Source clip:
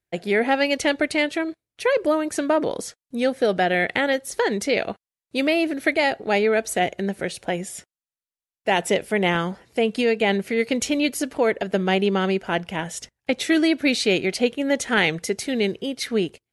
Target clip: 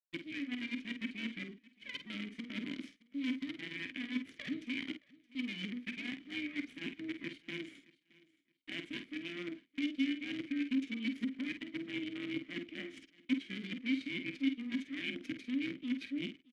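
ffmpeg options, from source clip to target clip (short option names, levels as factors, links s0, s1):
-filter_complex "[0:a]afftfilt=real='real(if(between(b,1,1008),(2*floor((b-1)/24)+1)*24-b,b),0)':imag='imag(if(between(b,1,1008),(2*floor((b-1)/24)+1)*24-b,b),0)*if(between(b,1,1008),-1,1)':win_size=2048:overlap=0.75,agate=range=0.00631:threshold=0.0178:ratio=16:detection=peak,highpass=f=160:w=0.5412,highpass=f=160:w=1.3066,equalizer=f=11000:w=2.6:g=6,areverse,acompressor=threshold=0.0447:ratio=20,areverse,aeval=exprs='val(0)+0.00158*(sin(2*PI*50*n/s)+sin(2*PI*2*50*n/s)/2+sin(2*PI*3*50*n/s)/3+sin(2*PI*4*50*n/s)/4+sin(2*PI*5*50*n/s)/5)':c=same,acrusher=bits=5:dc=4:mix=0:aa=0.000001,adynamicsmooth=sensitivity=6:basefreq=6900,asplit=3[s0][s1][s2];[s0]bandpass=f=270:t=q:w=8,volume=1[s3];[s1]bandpass=f=2290:t=q:w=8,volume=0.501[s4];[s2]bandpass=f=3010:t=q:w=8,volume=0.355[s5];[s3][s4][s5]amix=inputs=3:normalize=0,asplit=2[s6][s7];[s7]adelay=49,volume=0.355[s8];[s6][s8]amix=inputs=2:normalize=0,asplit=2[s9][s10];[s10]aecho=0:1:620|1240:0.0668|0.0147[s11];[s9][s11]amix=inputs=2:normalize=0,adynamicequalizer=threshold=0.00112:dfrequency=2800:dqfactor=0.7:tfrequency=2800:tqfactor=0.7:attack=5:release=100:ratio=0.375:range=3:mode=cutabove:tftype=highshelf,volume=1.78"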